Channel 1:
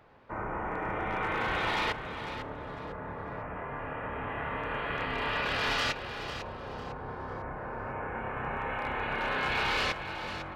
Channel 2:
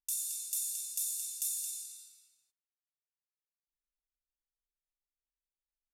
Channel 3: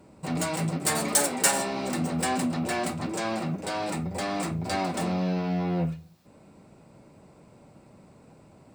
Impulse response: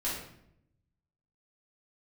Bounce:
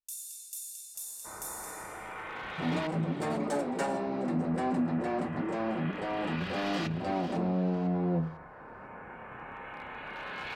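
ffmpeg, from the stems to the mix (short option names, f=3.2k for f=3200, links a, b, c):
-filter_complex "[0:a]lowshelf=f=370:g=-8.5,adelay=950,volume=-8dB[a];[1:a]volume=-6dB[b];[2:a]bandpass=f=320:t=q:w=0.58:csg=0,adelay=2350,volume=-0.5dB[c];[a][b][c]amix=inputs=3:normalize=0"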